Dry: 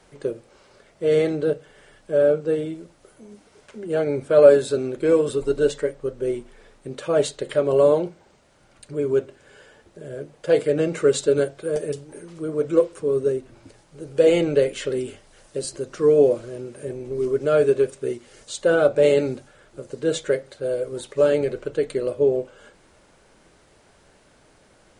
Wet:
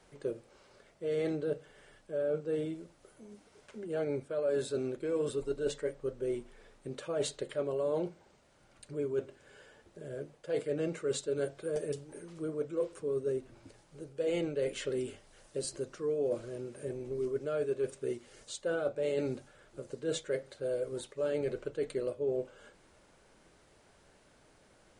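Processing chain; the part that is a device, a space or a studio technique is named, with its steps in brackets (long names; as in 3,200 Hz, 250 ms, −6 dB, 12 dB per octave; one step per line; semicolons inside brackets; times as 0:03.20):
compression on the reversed sound (reversed playback; downward compressor 6 to 1, threshold −22 dBFS, peak gain reduction 14.5 dB; reversed playback)
level −7.5 dB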